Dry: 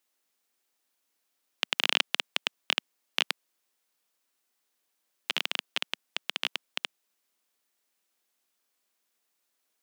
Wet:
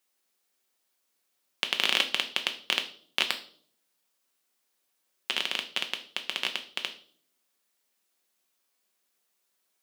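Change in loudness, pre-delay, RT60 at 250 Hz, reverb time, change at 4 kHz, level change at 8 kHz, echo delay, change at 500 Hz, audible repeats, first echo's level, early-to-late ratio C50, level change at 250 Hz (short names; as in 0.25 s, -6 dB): +1.5 dB, 5 ms, 0.80 s, 0.55 s, +1.5 dB, +1.5 dB, none, +2.0 dB, none, none, 13.0 dB, +1.5 dB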